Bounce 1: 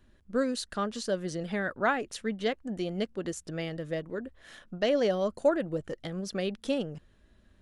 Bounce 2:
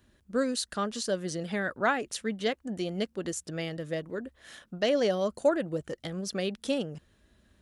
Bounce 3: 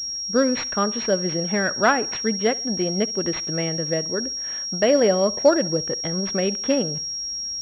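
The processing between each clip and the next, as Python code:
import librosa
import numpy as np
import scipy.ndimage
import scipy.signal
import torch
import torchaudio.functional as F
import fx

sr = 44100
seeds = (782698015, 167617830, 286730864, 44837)

y1 = scipy.signal.sosfilt(scipy.signal.butter(2, 48.0, 'highpass', fs=sr, output='sos'), x)
y1 = fx.high_shelf(y1, sr, hz=4500.0, db=7.0)
y2 = fx.echo_feedback(y1, sr, ms=67, feedback_pct=46, wet_db=-21.5)
y2 = fx.pwm(y2, sr, carrier_hz=5600.0)
y2 = F.gain(torch.from_numpy(y2), 8.5).numpy()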